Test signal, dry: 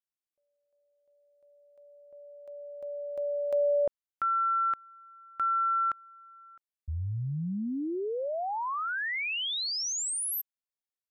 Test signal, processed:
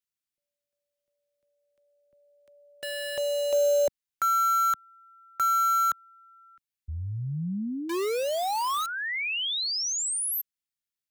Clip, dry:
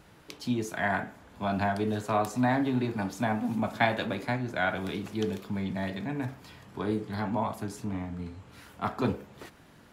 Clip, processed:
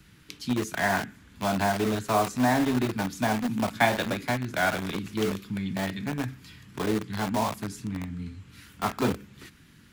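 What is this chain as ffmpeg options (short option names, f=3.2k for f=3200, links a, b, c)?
-filter_complex "[0:a]acrossover=split=170|4100[a][b][c];[a]acompressor=threshold=-38dB:ratio=2:attack=1.9:release=43:knee=2.83:detection=peak[d];[d][b][c]amix=inputs=3:normalize=0,acrossover=split=340|1300|5900[e][f][g][h];[f]acrusher=bits=5:mix=0:aa=0.000001[i];[e][i][g][h]amix=inputs=4:normalize=0,volume=3dB"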